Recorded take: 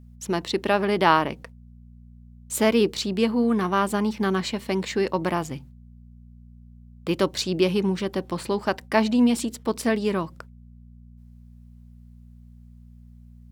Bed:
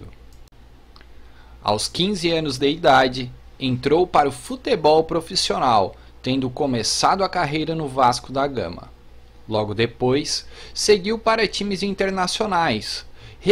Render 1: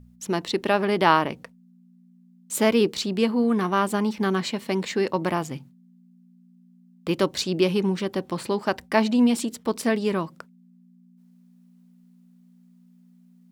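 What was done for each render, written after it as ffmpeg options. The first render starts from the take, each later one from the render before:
-af "bandreject=f=60:t=h:w=4,bandreject=f=120:t=h:w=4"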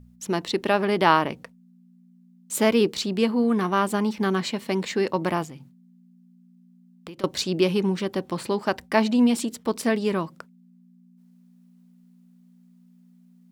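-filter_complex "[0:a]asettb=1/sr,asplit=3[s0][s1][s2];[s0]atrim=end=5.444[s3];[s1]atrim=start=5.44:end=7.24,asetpts=PTS-STARTPTS,afade=t=in:d=0.004:c=qsin,afade=t=out:st=1.796:d=0.004:c=qsin,acompressor=threshold=0.0158:ratio=12:attack=3.2:release=140:knee=1:detection=peak[s4];[s2]atrim=start=7.236[s5];[s3][s4]acrossfade=d=0.004:c1=hsin:c2=qsin[s6];[s6][s5]acrossfade=d=0.004:c1=qsin:c2=hsin"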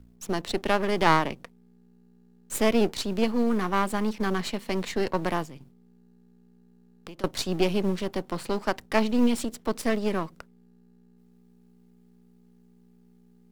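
-filter_complex "[0:a]aeval=exprs='if(lt(val(0),0),0.251*val(0),val(0))':c=same,acrossover=split=180[s0][s1];[s0]acrusher=bits=6:mode=log:mix=0:aa=0.000001[s2];[s2][s1]amix=inputs=2:normalize=0"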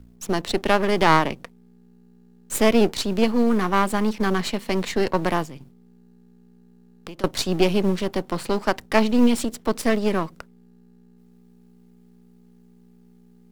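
-af "volume=1.78,alimiter=limit=0.708:level=0:latency=1"

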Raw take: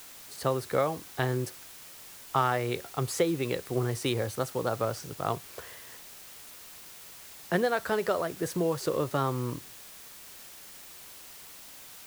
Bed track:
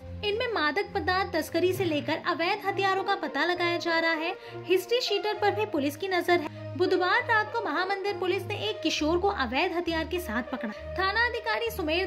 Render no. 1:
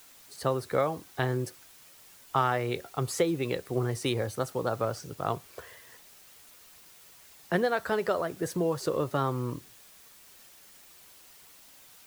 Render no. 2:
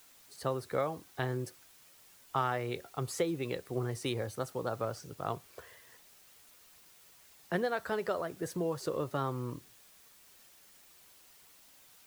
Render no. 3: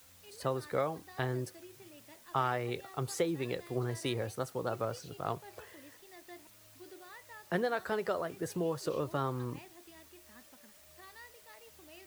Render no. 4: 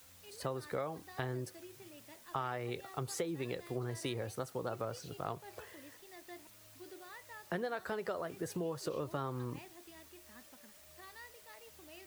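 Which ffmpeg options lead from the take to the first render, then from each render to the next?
-af "afftdn=nr=7:nf=-48"
-af "volume=0.531"
-filter_complex "[1:a]volume=0.0398[s0];[0:a][s0]amix=inputs=2:normalize=0"
-af "acompressor=threshold=0.0158:ratio=2.5"

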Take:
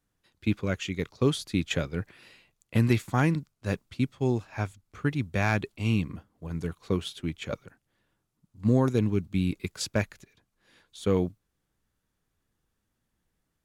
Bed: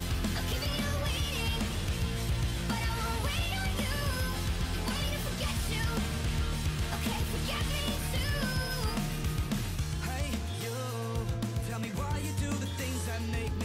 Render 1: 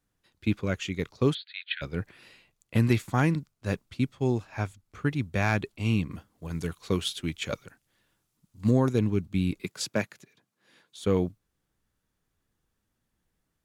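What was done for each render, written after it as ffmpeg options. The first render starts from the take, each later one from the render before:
-filter_complex "[0:a]asplit=3[s0][s1][s2];[s0]afade=t=out:st=1.33:d=0.02[s3];[s1]asuperpass=centerf=2500:order=20:qfactor=0.87,afade=t=in:st=1.33:d=0.02,afade=t=out:st=1.81:d=0.02[s4];[s2]afade=t=in:st=1.81:d=0.02[s5];[s3][s4][s5]amix=inputs=3:normalize=0,asettb=1/sr,asplit=3[s6][s7][s8];[s6]atrim=end=6.114[s9];[s7]atrim=start=6.11:end=8.71,asetpts=PTS-STARTPTS,afade=t=in:d=0.004:c=qsin,afade=t=out:st=2.596:d=0.004:c=qsin,highshelf=f=2100:g=8.5[s10];[s8]atrim=start=8.706[s11];[s9][s10]acrossfade=d=0.004:c1=hsin:c2=qsin[s12];[s12][s11]acrossfade=d=0.004:c1=qsin:c2=hsin,asettb=1/sr,asplit=3[s13][s14][s15];[s13]atrim=end=9.634[s16];[s14]atrim=start=9.63:end=11.04,asetpts=PTS-STARTPTS,afade=t=in:d=0.004:c=qsin,afade=t=out:st=1.406:d=0.004:c=qsin,highpass=f=130:w=0.5412,highpass=f=130:w=1.3066[s17];[s15]atrim=start=11.036[s18];[s16][s17]acrossfade=d=0.004:c1=hsin:c2=qsin[s19];[s19][s18]acrossfade=d=0.004:c1=qsin:c2=hsin"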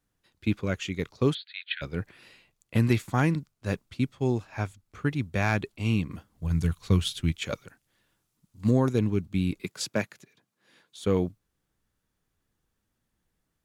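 -filter_complex "[0:a]asplit=3[s0][s1][s2];[s0]afade=t=out:st=6.31:d=0.02[s3];[s1]asubboost=boost=4.5:cutoff=160,afade=t=in:st=6.31:d=0.02,afade=t=out:st=7.31:d=0.02[s4];[s2]afade=t=in:st=7.31:d=0.02[s5];[s3][s4][s5]amix=inputs=3:normalize=0"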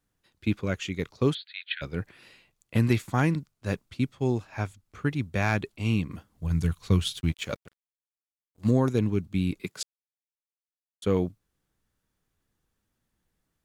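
-filter_complex "[0:a]asettb=1/sr,asplit=3[s0][s1][s2];[s0]atrim=end=7.164[s3];[s1]atrim=start=7.16:end=8.69,asetpts=PTS-STARTPTS,afade=t=in:d=0.004:c=qsin,afade=t=out:st=1.526:d=0.004:c=qsin,aeval=exprs='sgn(val(0))*max(abs(val(0))-0.00376,0)':c=same[s4];[s2]atrim=start=8.686[s5];[s3][s4]acrossfade=d=0.004:c1=hsin:c2=qsin[s6];[s6][s5]acrossfade=d=0.004:c1=qsin:c2=hsin,asplit=3[s7][s8][s9];[s7]atrim=end=9.83,asetpts=PTS-STARTPTS,afade=t=out:st=9.826:d=0.004:c=hsin[s10];[s8]atrim=start=9.83:end=11.02,asetpts=PTS-STARTPTS,volume=0[s11];[s9]atrim=start=11.02,asetpts=PTS-STARTPTS,afade=t=in:d=0.004:c=hsin[s12];[s10][s11][s12]concat=n=3:v=0:a=1"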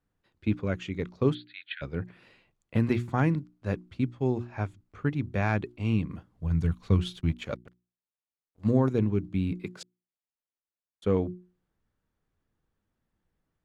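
-af "lowpass=f=1600:p=1,bandreject=f=60:t=h:w=6,bandreject=f=120:t=h:w=6,bandreject=f=180:t=h:w=6,bandreject=f=240:t=h:w=6,bandreject=f=300:t=h:w=6,bandreject=f=360:t=h:w=6"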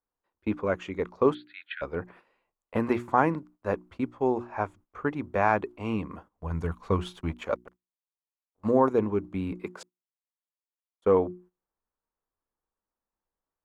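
-af "equalizer=f=125:t=o:w=1:g=-12,equalizer=f=500:t=o:w=1:g=5,equalizer=f=1000:t=o:w=1:g=11,equalizer=f=4000:t=o:w=1:g=-6,agate=range=0.2:threshold=0.00282:ratio=16:detection=peak"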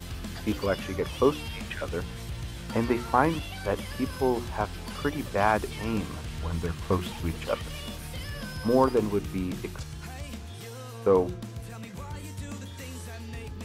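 -filter_complex "[1:a]volume=0.531[s0];[0:a][s0]amix=inputs=2:normalize=0"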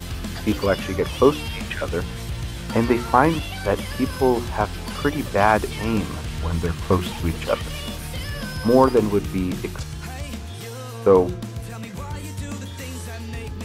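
-af "volume=2.24,alimiter=limit=0.794:level=0:latency=1"

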